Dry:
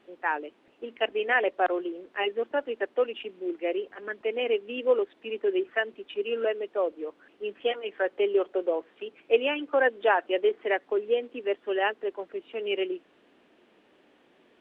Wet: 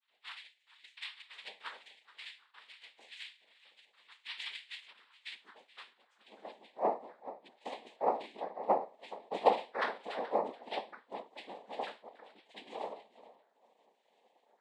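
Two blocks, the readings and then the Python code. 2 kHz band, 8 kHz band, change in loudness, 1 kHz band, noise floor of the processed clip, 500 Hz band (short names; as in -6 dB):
-16.0 dB, n/a, -10.5 dB, -4.5 dB, -74 dBFS, -14.0 dB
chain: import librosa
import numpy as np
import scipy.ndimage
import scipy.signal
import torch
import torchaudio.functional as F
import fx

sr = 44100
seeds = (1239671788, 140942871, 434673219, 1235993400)

p1 = fx.phaser_stages(x, sr, stages=4, low_hz=140.0, high_hz=1800.0, hz=0.41, feedback_pct=25)
p2 = p1 + fx.echo_single(p1, sr, ms=426, db=-17.0, dry=0)
p3 = fx.filter_sweep_highpass(p2, sr, from_hz=2400.0, to_hz=620.0, start_s=4.6, end_s=6.93, q=3.3)
p4 = fx.comb_fb(p3, sr, f0_hz=540.0, decay_s=0.32, harmonics='all', damping=0.0, mix_pct=100)
p5 = fx.rider(p4, sr, range_db=3, speed_s=2.0)
p6 = p4 + (p5 * librosa.db_to_amplitude(-2.0))
p7 = fx.noise_vocoder(p6, sr, seeds[0], bands=6)
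y = p7 * librosa.db_to_amplitude(1.0)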